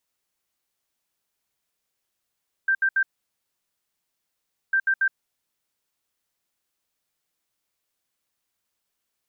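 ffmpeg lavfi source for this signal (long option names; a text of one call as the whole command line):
ffmpeg -f lavfi -i "aevalsrc='0.133*sin(2*PI*1570*t)*clip(min(mod(mod(t,2.05),0.14),0.07-mod(mod(t,2.05),0.14))/0.005,0,1)*lt(mod(t,2.05),0.42)':duration=4.1:sample_rate=44100" out.wav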